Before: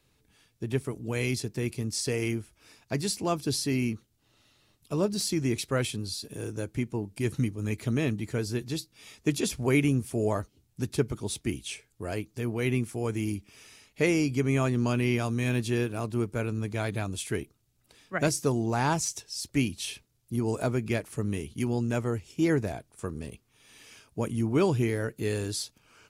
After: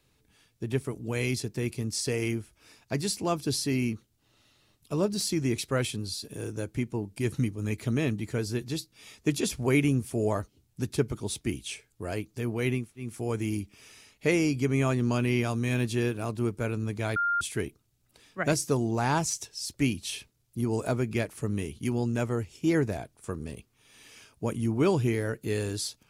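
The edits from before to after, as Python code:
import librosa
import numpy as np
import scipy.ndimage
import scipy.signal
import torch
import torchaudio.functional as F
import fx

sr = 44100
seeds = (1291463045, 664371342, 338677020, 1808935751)

y = fx.edit(x, sr, fx.insert_room_tone(at_s=12.82, length_s=0.25, crossfade_s=0.24),
    fx.bleep(start_s=16.91, length_s=0.25, hz=1400.0, db=-23.5), tone=tone)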